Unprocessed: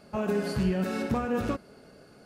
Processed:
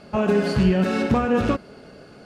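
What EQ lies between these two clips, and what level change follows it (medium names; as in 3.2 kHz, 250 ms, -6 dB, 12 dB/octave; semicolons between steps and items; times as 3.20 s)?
distance through air 52 m; peaking EQ 3 kHz +3 dB 0.59 oct; +8.5 dB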